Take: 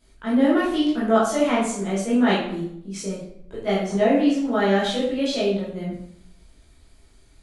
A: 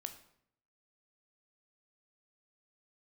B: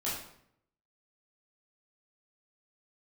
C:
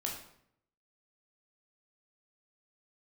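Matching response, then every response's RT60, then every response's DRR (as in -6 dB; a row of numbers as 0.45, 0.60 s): B; 0.70, 0.70, 0.70 s; 7.0, -8.5, -1.5 dB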